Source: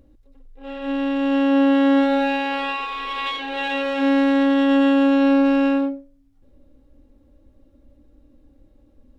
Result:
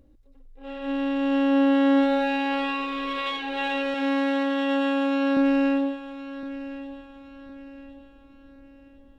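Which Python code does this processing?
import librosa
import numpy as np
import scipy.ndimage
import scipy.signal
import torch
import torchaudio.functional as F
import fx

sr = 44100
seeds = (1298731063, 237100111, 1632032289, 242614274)

p1 = fx.highpass(x, sr, hz=390.0, slope=6, at=(3.94, 5.37))
p2 = p1 + fx.echo_feedback(p1, sr, ms=1063, feedback_pct=39, wet_db=-14.0, dry=0)
y = p2 * librosa.db_to_amplitude(-3.5)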